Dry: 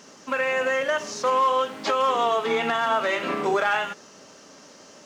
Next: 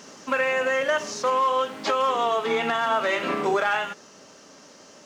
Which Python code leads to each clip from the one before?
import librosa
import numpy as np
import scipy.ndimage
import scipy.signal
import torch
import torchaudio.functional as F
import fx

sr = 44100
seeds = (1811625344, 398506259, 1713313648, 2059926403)

y = fx.rider(x, sr, range_db=4, speed_s=0.5)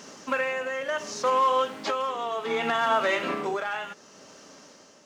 y = x * (1.0 - 0.59 / 2.0 + 0.59 / 2.0 * np.cos(2.0 * np.pi * 0.68 * (np.arange(len(x)) / sr)))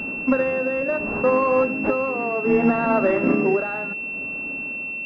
y = fx.graphic_eq(x, sr, hz=(125, 250, 1000), db=(4, 9, -8))
y = fx.pwm(y, sr, carrier_hz=2700.0)
y = F.gain(torch.from_numpy(y), 8.0).numpy()